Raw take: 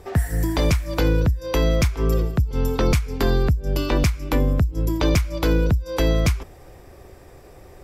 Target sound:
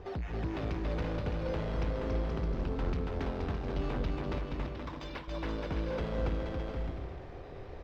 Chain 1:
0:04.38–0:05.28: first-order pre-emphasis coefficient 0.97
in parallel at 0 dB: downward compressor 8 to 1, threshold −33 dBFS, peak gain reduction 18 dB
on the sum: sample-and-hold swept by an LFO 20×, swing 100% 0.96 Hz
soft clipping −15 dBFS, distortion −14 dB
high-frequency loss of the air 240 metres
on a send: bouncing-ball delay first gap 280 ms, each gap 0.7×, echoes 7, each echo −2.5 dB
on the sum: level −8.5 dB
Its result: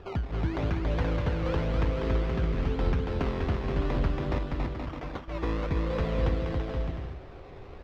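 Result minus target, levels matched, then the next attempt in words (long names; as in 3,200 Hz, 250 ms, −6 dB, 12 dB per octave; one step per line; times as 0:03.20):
soft clipping: distortion −8 dB; sample-and-hold swept by an LFO: distortion +6 dB
0:04.38–0:05.28: first-order pre-emphasis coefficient 0.97
in parallel at 0 dB: downward compressor 8 to 1, threshold −33 dBFS, peak gain reduction 18 dB
on the sum: sample-and-hold swept by an LFO 7×, swing 100% 0.96 Hz
soft clipping −24.5 dBFS, distortion −6 dB
high-frequency loss of the air 240 metres
on a send: bouncing-ball delay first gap 280 ms, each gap 0.7×, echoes 7, each echo −2.5 dB
on the sum: level −8.5 dB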